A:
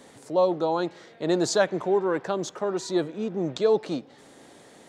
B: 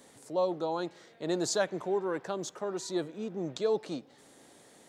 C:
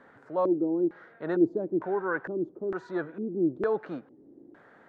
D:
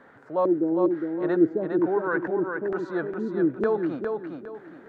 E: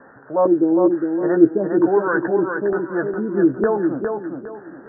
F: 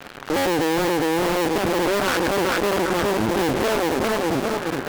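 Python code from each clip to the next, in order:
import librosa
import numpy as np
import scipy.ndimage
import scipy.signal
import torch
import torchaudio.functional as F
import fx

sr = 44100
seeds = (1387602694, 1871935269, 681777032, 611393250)

y1 = fx.high_shelf(x, sr, hz=7300.0, db=10.0)
y1 = y1 * 10.0 ** (-7.5 / 20.0)
y2 = fx.filter_lfo_lowpass(y1, sr, shape='square', hz=1.1, low_hz=330.0, high_hz=1500.0, q=4.6)
y3 = fx.echo_feedback(y2, sr, ms=408, feedback_pct=31, wet_db=-5.0)
y3 = y3 * 10.0 ** (3.0 / 20.0)
y4 = scipy.signal.sosfilt(scipy.signal.butter(16, 1800.0, 'lowpass', fs=sr, output='sos'), y3)
y4 = fx.doubler(y4, sr, ms=15.0, db=-8.0)
y4 = y4 * 10.0 ** (6.0 / 20.0)
y5 = fx.cycle_switch(y4, sr, every=2, mode='muted')
y5 = fx.fuzz(y5, sr, gain_db=37.0, gate_db=-45.0)
y5 = y5 * 10.0 ** (-4.0 / 20.0)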